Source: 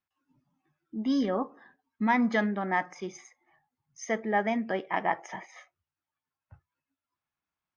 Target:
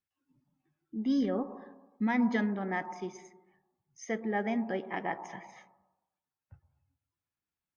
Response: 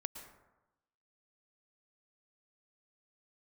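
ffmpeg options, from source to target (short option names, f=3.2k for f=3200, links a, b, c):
-filter_complex "[0:a]bandreject=f=640:w=12,asplit=2[a][b];[b]lowpass=f=1.1k:w=0.5412,lowpass=f=1.1k:w=1.3066[c];[1:a]atrim=start_sample=2205[d];[c][d]afir=irnorm=-1:irlink=0,volume=-1dB[e];[a][e]amix=inputs=2:normalize=0,volume=-5.5dB"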